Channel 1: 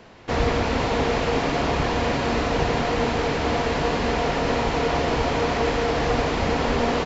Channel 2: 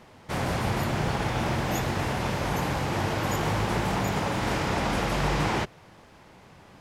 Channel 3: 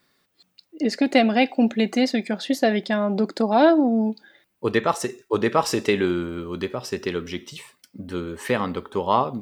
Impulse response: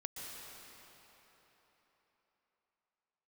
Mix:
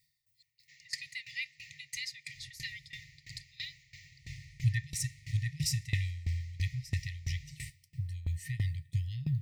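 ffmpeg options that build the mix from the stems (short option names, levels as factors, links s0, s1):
-filter_complex "[0:a]highpass=f=250:w=0.5412,highpass=f=250:w=1.3066,adelay=400,volume=0.15,asplit=2[s0][s1];[s1]volume=0.562[s2];[1:a]lowpass=6800,adelay=2050,volume=0.398[s3];[2:a]bandreject=f=2200:w=15,asubboost=boost=4.5:cutoff=210,volume=1.19,asplit=3[s4][s5][s6];[s5]volume=0.112[s7];[s6]apad=whole_len=390457[s8];[s3][s8]sidechaincompress=threshold=0.0355:ratio=8:attack=26:release=167[s9];[3:a]atrim=start_sample=2205[s10];[s2][s7]amix=inputs=2:normalize=0[s11];[s11][s10]afir=irnorm=-1:irlink=0[s12];[s0][s9][s4][s12]amix=inputs=4:normalize=0,afftfilt=real='re*(1-between(b*sr/4096,160,1800))':imag='im*(1-between(b*sr/4096,160,1800))':win_size=4096:overlap=0.75,equalizer=f=3100:t=o:w=0.67:g=-10.5,aeval=exprs='val(0)*pow(10,-19*if(lt(mod(3*n/s,1),2*abs(3)/1000),1-mod(3*n/s,1)/(2*abs(3)/1000),(mod(3*n/s,1)-2*abs(3)/1000)/(1-2*abs(3)/1000))/20)':c=same"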